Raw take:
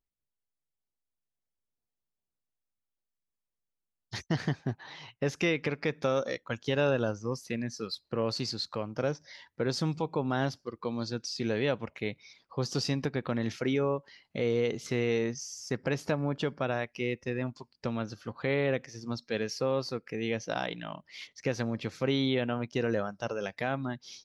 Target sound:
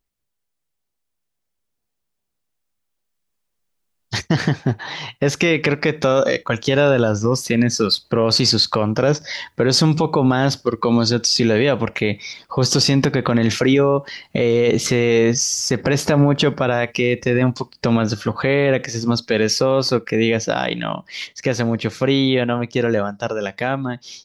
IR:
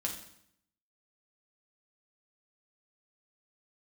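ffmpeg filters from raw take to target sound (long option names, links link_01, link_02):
-filter_complex "[0:a]dynaudnorm=framelen=590:gausssize=17:maxgain=11.5dB,asplit=2[link_01][link_02];[1:a]atrim=start_sample=2205,atrim=end_sample=3087[link_03];[link_02][link_03]afir=irnorm=-1:irlink=0,volume=-20dB[link_04];[link_01][link_04]amix=inputs=2:normalize=0,alimiter=level_in=14.5dB:limit=-1dB:release=50:level=0:latency=1,volume=-5dB"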